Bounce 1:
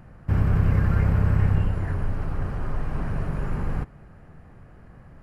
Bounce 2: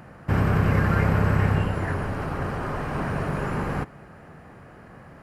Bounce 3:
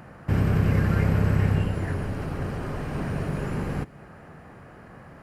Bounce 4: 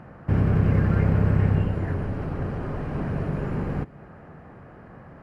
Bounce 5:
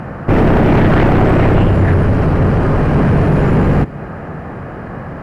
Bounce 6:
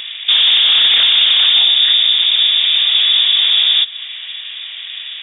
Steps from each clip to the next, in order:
HPF 290 Hz 6 dB/oct; gain +8.5 dB
dynamic EQ 1100 Hz, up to -8 dB, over -43 dBFS, Q 0.73
LPF 1400 Hz 6 dB/oct; gain +1.5 dB
sine folder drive 13 dB, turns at -8.5 dBFS; gain +2 dB
inverted band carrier 3600 Hz; gain -2 dB

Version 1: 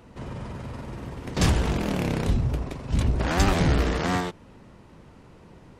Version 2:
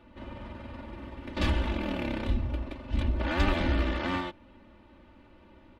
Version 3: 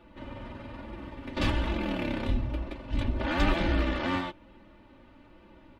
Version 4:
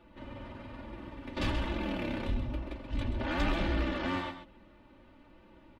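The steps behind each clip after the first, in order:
resonant high shelf 4700 Hz -12 dB, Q 1.5; comb 3.4 ms, depth 98%; gain -8 dB
flange 1.1 Hz, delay 5.7 ms, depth 2 ms, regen -47%; gain +5 dB
echo 0.131 s -9.5 dB; soft clip -17 dBFS, distortion -20 dB; gain -3.5 dB

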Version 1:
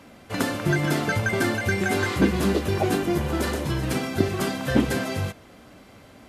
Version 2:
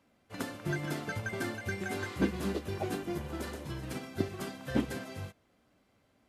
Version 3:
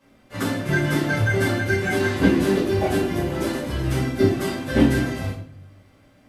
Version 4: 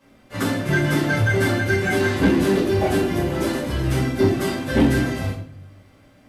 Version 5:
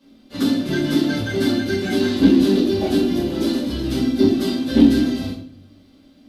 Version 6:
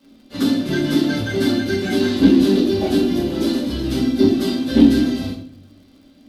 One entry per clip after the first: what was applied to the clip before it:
upward expander 1.5:1, over -40 dBFS; gain -8.5 dB
shoebox room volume 80 m³, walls mixed, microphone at 2.3 m; gain +3 dB
soft clip -11.5 dBFS, distortion -18 dB; gain +2.5 dB
ten-band EQ 125 Hz -11 dB, 250 Hz +12 dB, 500 Hz -3 dB, 1000 Hz -5 dB, 2000 Hz -8 dB, 4000 Hz +11 dB, 8000 Hz -5 dB; gain -1.5 dB
crackle 110/s -48 dBFS; gain +1 dB

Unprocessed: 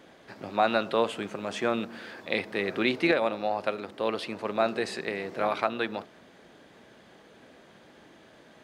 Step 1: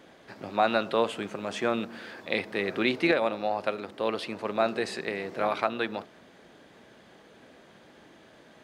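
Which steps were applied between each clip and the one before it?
nothing audible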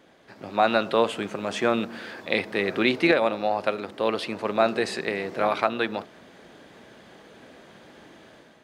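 AGC gain up to 8 dB; gain -3 dB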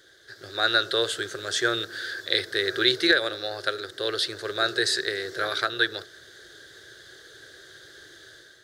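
EQ curve 120 Hz 0 dB, 220 Hz -25 dB, 370 Hz +1 dB, 950 Hz -18 dB, 1600 Hz +10 dB, 2500 Hz -12 dB, 3600 Hz +11 dB, 8200 Hz +9 dB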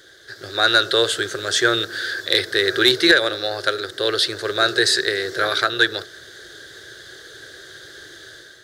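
soft clip -10.5 dBFS, distortion -20 dB; gain +7.5 dB

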